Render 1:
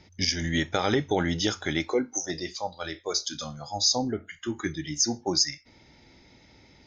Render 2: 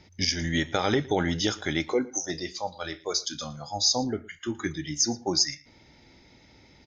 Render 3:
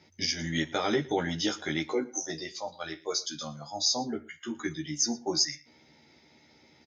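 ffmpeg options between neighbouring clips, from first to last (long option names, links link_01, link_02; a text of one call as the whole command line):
ffmpeg -i in.wav -af "aecho=1:1:114:0.0841" out.wav
ffmpeg -i in.wav -filter_complex "[0:a]highpass=150,asplit=2[link_01][link_02];[link_02]adelay=13,volume=-2dB[link_03];[link_01][link_03]amix=inputs=2:normalize=0,volume=-5dB" out.wav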